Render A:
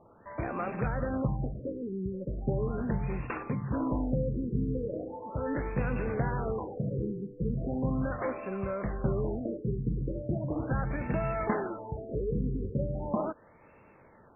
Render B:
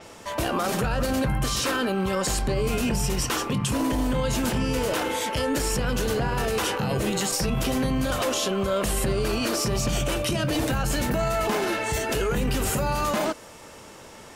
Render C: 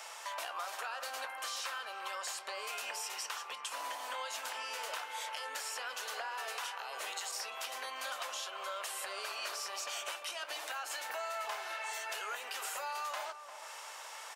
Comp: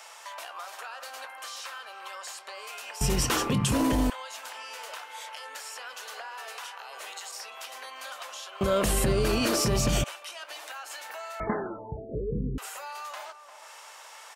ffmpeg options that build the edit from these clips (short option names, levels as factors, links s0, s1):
-filter_complex "[1:a]asplit=2[s0][s1];[2:a]asplit=4[s2][s3][s4][s5];[s2]atrim=end=3.012[s6];[s0]atrim=start=3.008:end=4.102[s7];[s3]atrim=start=4.098:end=8.612[s8];[s1]atrim=start=8.608:end=10.042[s9];[s4]atrim=start=10.038:end=11.402[s10];[0:a]atrim=start=11.398:end=12.582[s11];[s5]atrim=start=12.578[s12];[s6][s7]acrossfade=d=0.004:c1=hsin:c2=hsin[s13];[s13][s8]acrossfade=d=0.004:c1=hsin:c2=hsin[s14];[s14][s9]acrossfade=d=0.004:c1=hsin:c2=hsin[s15];[s15][s10]acrossfade=d=0.004:c1=hsin:c2=hsin[s16];[s16][s11]acrossfade=d=0.004:c1=hsin:c2=hsin[s17];[s17][s12]acrossfade=d=0.004:c1=hsin:c2=hsin"